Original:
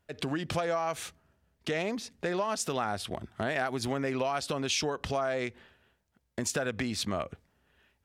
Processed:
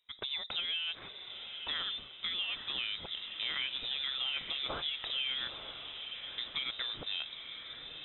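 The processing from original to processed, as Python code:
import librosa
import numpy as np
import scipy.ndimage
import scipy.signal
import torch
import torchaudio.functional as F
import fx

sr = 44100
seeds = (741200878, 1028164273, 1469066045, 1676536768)

y = fx.freq_invert(x, sr, carrier_hz=3800)
y = fx.echo_diffused(y, sr, ms=925, feedback_pct=52, wet_db=-8.0)
y = y * librosa.db_to_amplitude(-6.0)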